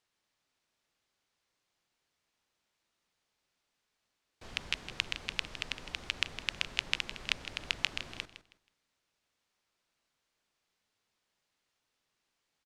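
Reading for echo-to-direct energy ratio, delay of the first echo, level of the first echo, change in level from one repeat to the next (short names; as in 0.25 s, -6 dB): -12.0 dB, 0.16 s, -12.5 dB, -12.0 dB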